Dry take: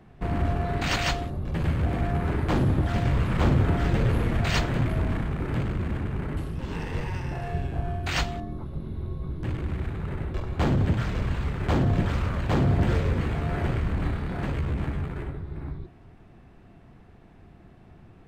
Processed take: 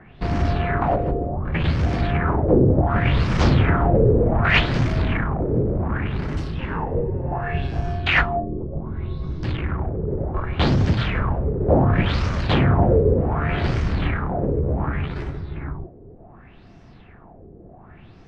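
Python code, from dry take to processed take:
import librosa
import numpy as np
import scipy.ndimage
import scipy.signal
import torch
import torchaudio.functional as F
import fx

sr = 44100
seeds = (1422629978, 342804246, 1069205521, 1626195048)

y = fx.filter_lfo_lowpass(x, sr, shape='sine', hz=0.67, low_hz=440.0, high_hz=5800.0, q=4.2)
y = F.gain(torch.from_numpy(y), 4.5).numpy()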